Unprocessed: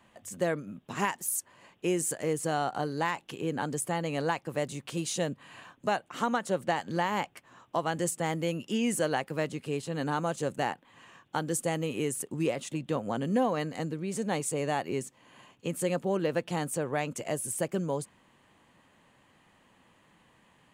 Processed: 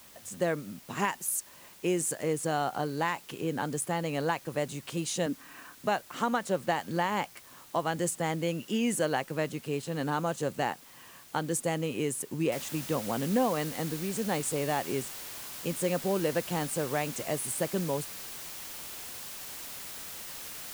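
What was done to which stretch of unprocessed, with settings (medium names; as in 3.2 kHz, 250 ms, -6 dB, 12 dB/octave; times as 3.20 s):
5.26–5.75 s: cabinet simulation 210–4000 Hz, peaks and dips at 280 Hz +8 dB, 610 Hz -4 dB, 880 Hz -3 dB, 1.4 kHz +6 dB, 3.3 kHz -9 dB
12.52 s: noise floor step -54 dB -42 dB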